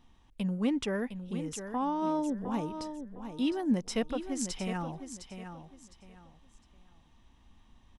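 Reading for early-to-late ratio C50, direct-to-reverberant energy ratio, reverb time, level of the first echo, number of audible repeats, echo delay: none, none, none, -9.5 dB, 3, 0.708 s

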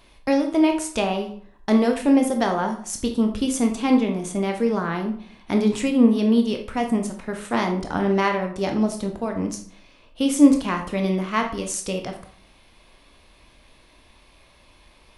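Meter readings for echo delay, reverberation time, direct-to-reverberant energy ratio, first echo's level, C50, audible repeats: none, 0.55 s, 3.5 dB, none, 8.5 dB, none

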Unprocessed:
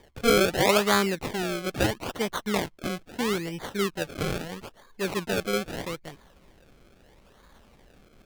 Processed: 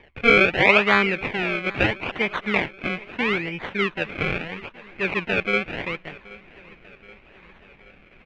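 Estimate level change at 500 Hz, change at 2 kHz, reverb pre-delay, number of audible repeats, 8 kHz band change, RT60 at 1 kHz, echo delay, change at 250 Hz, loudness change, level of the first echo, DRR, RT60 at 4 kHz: +2.0 dB, +11.0 dB, none, 3, under -15 dB, none, 0.776 s, +1.5 dB, +5.5 dB, -21.0 dB, none, none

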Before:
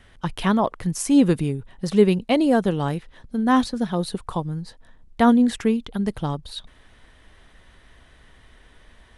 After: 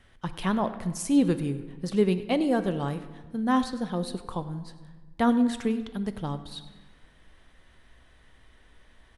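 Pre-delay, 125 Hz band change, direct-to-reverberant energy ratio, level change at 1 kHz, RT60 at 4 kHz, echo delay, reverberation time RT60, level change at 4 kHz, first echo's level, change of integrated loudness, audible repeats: 4 ms, -6.0 dB, 10.0 dB, -6.0 dB, 0.90 s, 0.1 s, 1.3 s, -6.0 dB, -18.0 dB, -6.0 dB, 1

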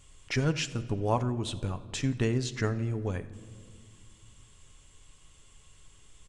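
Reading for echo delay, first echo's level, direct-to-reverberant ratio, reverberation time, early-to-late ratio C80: 85 ms, -22.0 dB, 10.0 dB, 1.9 s, 16.0 dB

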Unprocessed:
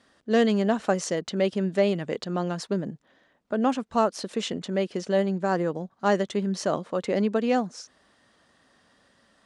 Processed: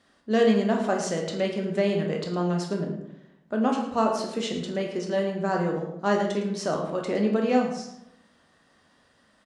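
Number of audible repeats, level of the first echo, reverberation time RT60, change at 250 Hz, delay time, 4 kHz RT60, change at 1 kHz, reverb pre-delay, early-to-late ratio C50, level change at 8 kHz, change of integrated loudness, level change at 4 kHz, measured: 1, -13.0 dB, 0.85 s, +0.5 dB, 0.11 s, 0.50 s, 0.0 dB, 13 ms, 5.0 dB, -1.0 dB, 0.0 dB, -0.5 dB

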